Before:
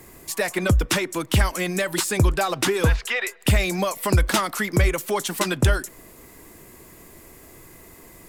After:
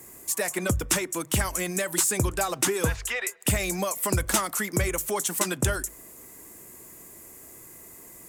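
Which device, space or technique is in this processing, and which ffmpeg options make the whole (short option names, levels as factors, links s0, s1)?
budget condenser microphone: -af "highpass=f=80:p=1,highshelf=f=5600:t=q:w=1.5:g=7,bandreject=f=50:t=h:w=6,bandreject=f=100:t=h:w=6,bandreject=f=150:t=h:w=6,volume=0.596"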